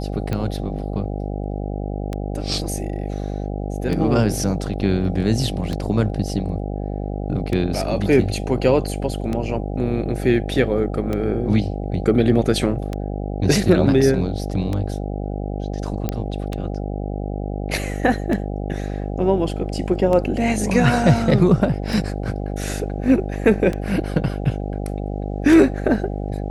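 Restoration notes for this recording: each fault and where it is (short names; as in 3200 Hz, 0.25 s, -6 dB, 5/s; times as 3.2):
buzz 50 Hz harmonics 16 -26 dBFS
tick 33 1/3 rpm -12 dBFS
16.09 pop -9 dBFS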